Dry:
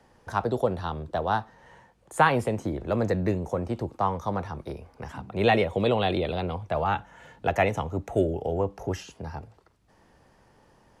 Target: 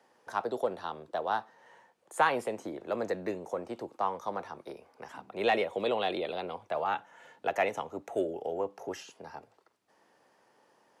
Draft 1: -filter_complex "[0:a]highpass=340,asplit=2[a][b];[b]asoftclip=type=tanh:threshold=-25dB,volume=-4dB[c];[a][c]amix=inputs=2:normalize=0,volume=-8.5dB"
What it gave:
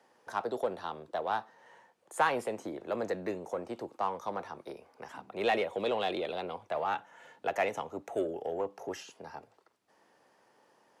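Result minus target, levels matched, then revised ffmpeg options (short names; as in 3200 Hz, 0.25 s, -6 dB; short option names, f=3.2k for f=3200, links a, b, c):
soft clip: distortion +12 dB
-filter_complex "[0:a]highpass=340,asplit=2[a][b];[b]asoftclip=type=tanh:threshold=-13dB,volume=-4dB[c];[a][c]amix=inputs=2:normalize=0,volume=-8.5dB"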